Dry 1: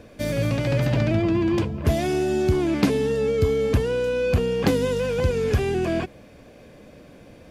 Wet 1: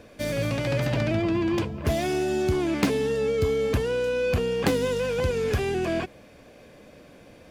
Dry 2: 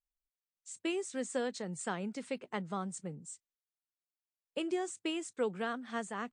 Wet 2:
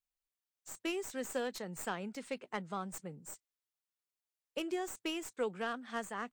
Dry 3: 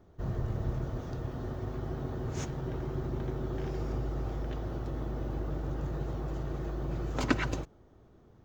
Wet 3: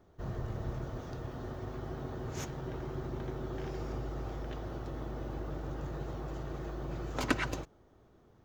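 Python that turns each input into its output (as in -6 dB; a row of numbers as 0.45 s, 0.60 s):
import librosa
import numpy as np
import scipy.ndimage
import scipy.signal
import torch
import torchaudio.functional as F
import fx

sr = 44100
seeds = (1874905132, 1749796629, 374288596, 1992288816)

y = fx.tracing_dist(x, sr, depth_ms=0.063)
y = fx.low_shelf(y, sr, hz=380.0, db=-5.5)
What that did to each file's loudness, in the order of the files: -3.0 LU, -2.0 LU, -3.5 LU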